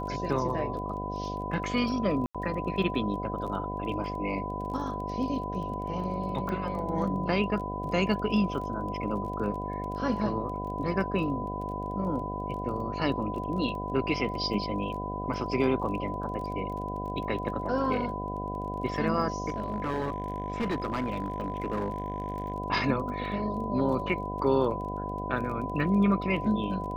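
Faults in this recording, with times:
mains buzz 50 Hz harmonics 15 −36 dBFS
surface crackle 19 per second −38 dBFS
whistle 1,000 Hz −35 dBFS
0:02.26–0:02.35: drop-out 86 ms
0:06.49: click −22 dBFS
0:19.48–0:22.52: clipping −25.5 dBFS

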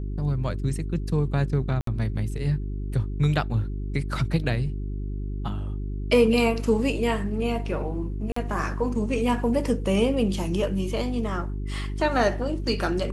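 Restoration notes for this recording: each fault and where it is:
mains hum 50 Hz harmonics 8 −30 dBFS
0:01.81–0:01.87: drop-out 63 ms
0:08.32–0:08.36: drop-out 44 ms

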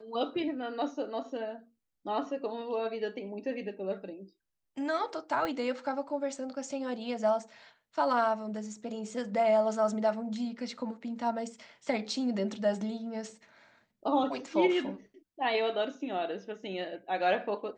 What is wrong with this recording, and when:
0:05.45: click −20 dBFS

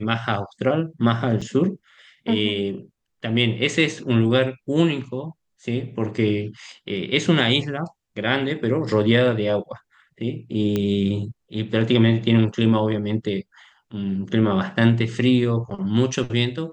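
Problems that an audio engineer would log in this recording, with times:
0:01.41–0:01.42: drop-out 5.4 ms
0:10.76: click −11 dBFS

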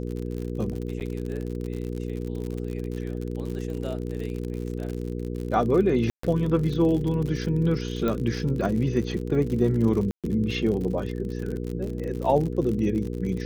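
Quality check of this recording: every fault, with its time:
surface crackle 63 per second −31 dBFS
mains hum 60 Hz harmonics 8 −31 dBFS
0:01.00–0:01.01: drop-out 9.1 ms
0:06.10–0:06.23: drop-out 134 ms
0:08.08: click −15 dBFS
0:10.11–0:10.24: drop-out 127 ms

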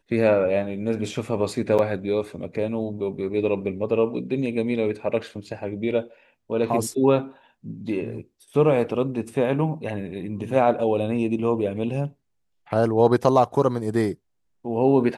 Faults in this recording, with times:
0:01.78–0:01.79: drop-out 7.5 ms

